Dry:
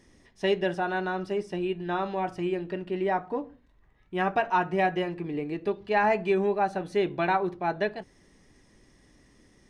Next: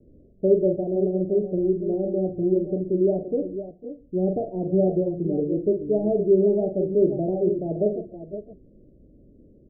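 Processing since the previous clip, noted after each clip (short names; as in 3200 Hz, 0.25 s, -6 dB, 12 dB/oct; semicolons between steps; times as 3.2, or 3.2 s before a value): gate with hold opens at -52 dBFS; steep low-pass 610 Hz 72 dB/oct; on a send: tapped delay 43/122/501/521 ms -7/-18.5/-18/-10.5 dB; on the sum: gain +6.5 dB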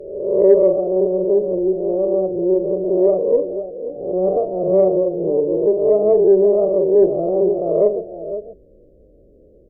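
spectral swells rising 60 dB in 1.07 s; graphic EQ 125/250/500 Hz -6/-9/+10 dB; added harmonics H 4 -35 dB, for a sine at -3 dBFS; gain +1.5 dB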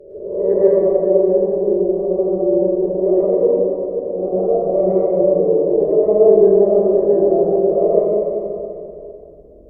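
plate-style reverb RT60 2.6 s, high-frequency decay 0.95×, pre-delay 95 ms, DRR -9 dB; gain -7.5 dB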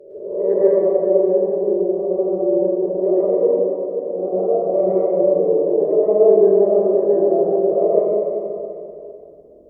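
HPF 300 Hz 6 dB/oct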